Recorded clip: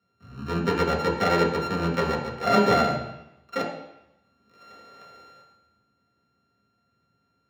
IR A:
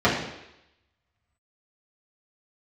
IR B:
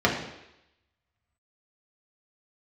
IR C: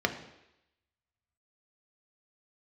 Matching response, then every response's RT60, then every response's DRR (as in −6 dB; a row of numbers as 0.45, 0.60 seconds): B; 0.85, 0.85, 0.85 seconds; −9.5, −3.5, 4.5 decibels